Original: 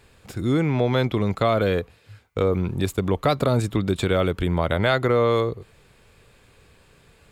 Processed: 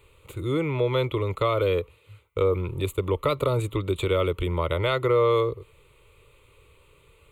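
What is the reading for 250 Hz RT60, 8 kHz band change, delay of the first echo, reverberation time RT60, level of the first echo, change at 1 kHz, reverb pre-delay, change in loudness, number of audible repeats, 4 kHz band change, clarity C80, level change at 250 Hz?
no reverb, -5.5 dB, no echo, no reverb, no echo, -3.0 dB, no reverb, -3.0 dB, no echo, -3.0 dB, no reverb, -7.0 dB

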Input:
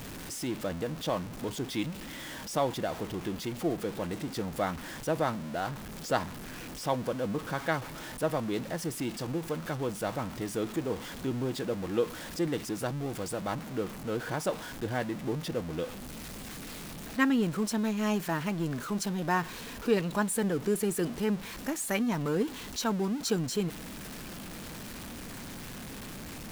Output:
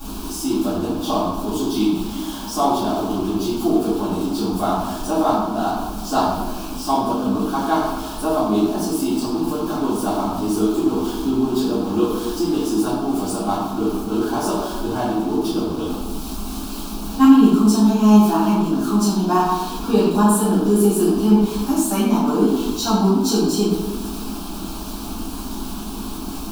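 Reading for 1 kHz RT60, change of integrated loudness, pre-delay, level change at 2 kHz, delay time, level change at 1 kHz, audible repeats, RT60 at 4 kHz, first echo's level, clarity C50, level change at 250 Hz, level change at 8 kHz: 1.1 s, +13.5 dB, 3 ms, +1.5 dB, no echo, +14.0 dB, no echo, 0.80 s, no echo, 0.0 dB, +15.5 dB, +10.0 dB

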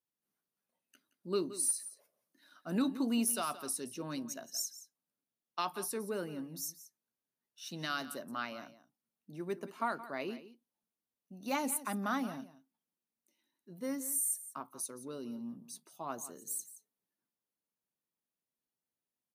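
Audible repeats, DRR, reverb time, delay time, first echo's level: 1, no reverb, no reverb, 173 ms, -15.0 dB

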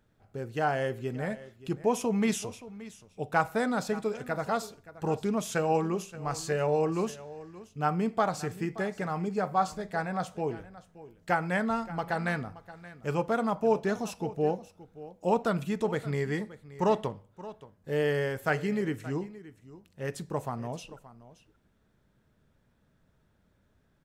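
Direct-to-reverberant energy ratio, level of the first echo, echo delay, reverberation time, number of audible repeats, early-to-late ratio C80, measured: no reverb, -17.0 dB, 575 ms, no reverb, 1, no reverb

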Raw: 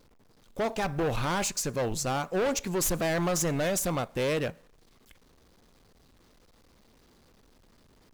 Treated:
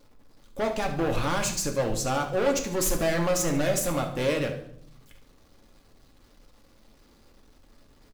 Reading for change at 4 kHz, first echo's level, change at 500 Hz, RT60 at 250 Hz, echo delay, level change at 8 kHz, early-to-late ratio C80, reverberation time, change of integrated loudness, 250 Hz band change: +2.0 dB, -12.5 dB, +3.0 dB, 1.0 s, 72 ms, +1.5 dB, 13.0 dB, 0.65 s, +2.5 dB, +2.5 dB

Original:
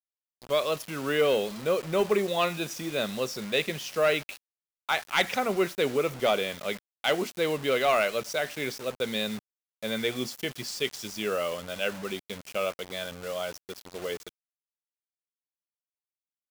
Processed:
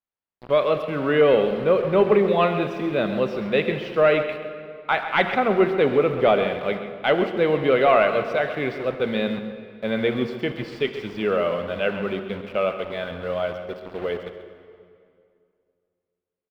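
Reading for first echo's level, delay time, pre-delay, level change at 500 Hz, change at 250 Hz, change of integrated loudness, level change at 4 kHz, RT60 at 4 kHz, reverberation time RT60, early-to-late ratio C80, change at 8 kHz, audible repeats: -11.5 dB, 133 ms, 35 ms, +8.0 dB, +8.5 dB, +6.5 dB, -1.5 dB, 1.7 s, 2.3 s, 8.0 dB, under -15 dB, 1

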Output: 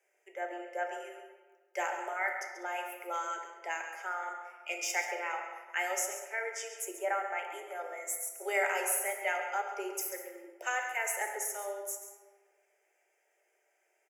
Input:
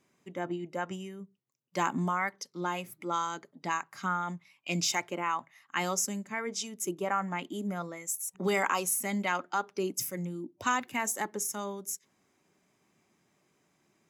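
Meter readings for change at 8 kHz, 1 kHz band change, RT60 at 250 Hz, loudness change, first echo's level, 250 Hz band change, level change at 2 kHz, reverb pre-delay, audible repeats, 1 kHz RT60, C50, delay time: -2.5 dB, -3.5 dB, 1.4 s, -2.5 dB, -11.0 dB, -16.0 dB, +1.0 dB, 3 ms, 1, 1.5 s, 4.0 dB, 136 ms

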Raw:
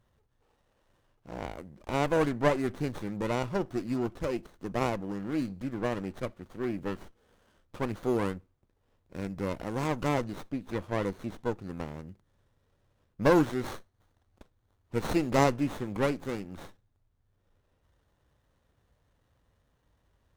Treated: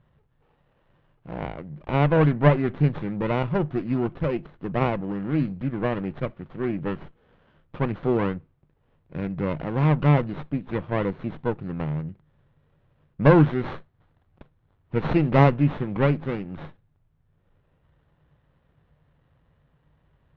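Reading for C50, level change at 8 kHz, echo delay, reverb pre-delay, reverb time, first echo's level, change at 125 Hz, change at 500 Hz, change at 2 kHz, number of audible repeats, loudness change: no reverb, under -20 dB, no echo, no reverb, no reverb, no echo, +13.0 dB, +5.0 dB, +5.0 dB, no echo, +7.0 dB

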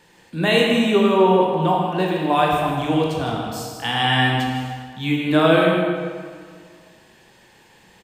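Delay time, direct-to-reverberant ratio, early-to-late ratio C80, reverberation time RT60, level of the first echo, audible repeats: 159 ms, -1.5 dB, 2.0 dB, 1.9 s, -8.5 dB, 1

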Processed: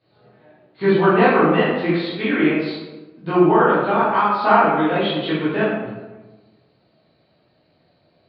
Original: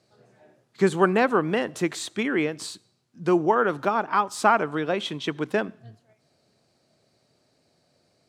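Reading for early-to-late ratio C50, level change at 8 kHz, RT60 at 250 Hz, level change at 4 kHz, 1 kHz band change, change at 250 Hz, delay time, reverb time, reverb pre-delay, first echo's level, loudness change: -1.0 dB, under -35 dB, 1.4 s, +5.5 dB, +6.5 dB, +7.5 dB, no echo, 1.2 s, 10 ms, no echo, +6.5 dB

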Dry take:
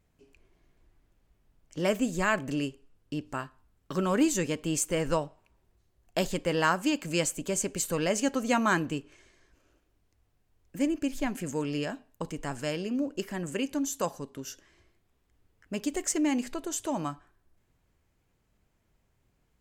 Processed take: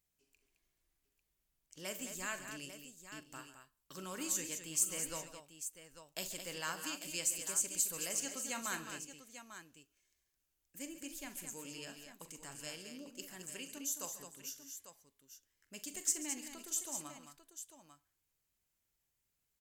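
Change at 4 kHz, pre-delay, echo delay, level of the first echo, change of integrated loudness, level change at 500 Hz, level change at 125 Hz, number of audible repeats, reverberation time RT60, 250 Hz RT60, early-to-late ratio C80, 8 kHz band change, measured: -7.0 dB, no reverb, 43 ms, -12.5 dB, -9.5 dB, -19.0 dB, -20.5 dB, 4, no reverb, no reverb, no reverb, -1.0 dB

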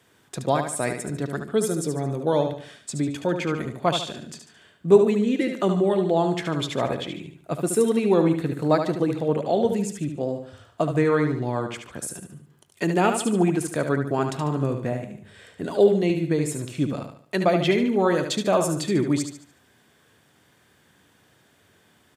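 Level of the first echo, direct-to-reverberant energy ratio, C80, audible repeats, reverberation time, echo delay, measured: -7.0 dB, no reverb, no reverb, 4, no reverb, 73 ms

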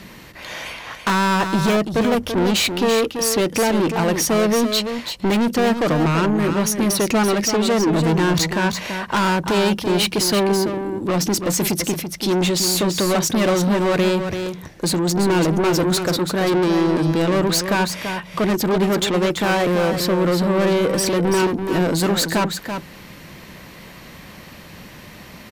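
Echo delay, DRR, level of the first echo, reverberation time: 335 ms, no reverb, -7.5 dB, no reverb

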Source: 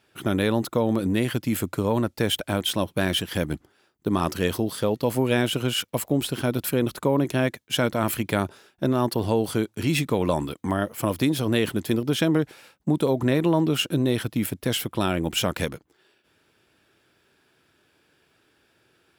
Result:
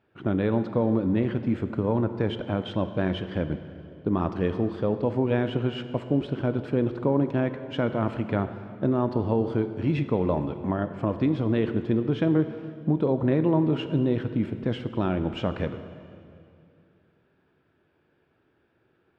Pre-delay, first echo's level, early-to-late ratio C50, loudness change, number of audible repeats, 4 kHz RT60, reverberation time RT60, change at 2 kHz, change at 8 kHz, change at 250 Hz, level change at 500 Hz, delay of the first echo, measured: 15 ms, no echo, 10.5 dB, -2.0 dB, no echo, 2.1 s, 2.5 s, -8.0 dB, under -30 dB, -0.5 dB, -1.5 dB, no echo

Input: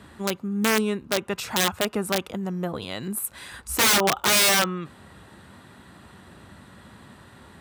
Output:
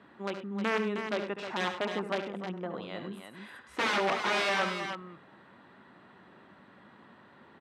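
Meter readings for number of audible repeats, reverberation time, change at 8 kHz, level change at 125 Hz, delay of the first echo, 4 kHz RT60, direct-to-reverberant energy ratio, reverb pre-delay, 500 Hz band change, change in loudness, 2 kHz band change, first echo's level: 3, no reverb, -24.0 dB, -10.0 dB, 70 ms, no reverb, no reverb, no reverb, -5.5 dB, -9.5 dB, -6.5 dB, -9.5 dB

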